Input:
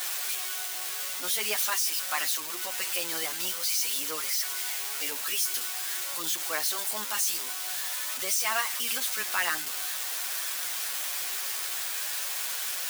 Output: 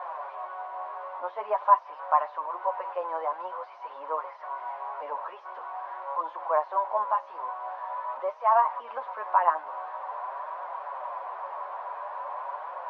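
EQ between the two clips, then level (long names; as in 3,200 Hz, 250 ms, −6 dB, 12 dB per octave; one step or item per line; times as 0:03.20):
high-pass with resonance 590 Hz, resonance Q 4.9
low-pass with resonance 1,000 Hz, resonance Q 9.6
high-frequency loss of the air 240 metres
−3.0 dB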